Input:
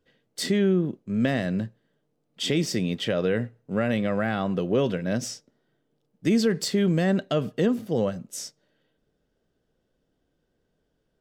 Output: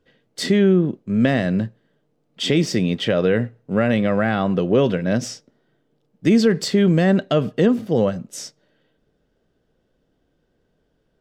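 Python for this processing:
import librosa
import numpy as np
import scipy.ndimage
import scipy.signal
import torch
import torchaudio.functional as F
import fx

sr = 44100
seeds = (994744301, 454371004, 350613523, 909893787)

y = fx.high_shelf(x, sr, hz=7500.0, db=-10.5)
y = y * 10.0 ** (6.5 / 20.0)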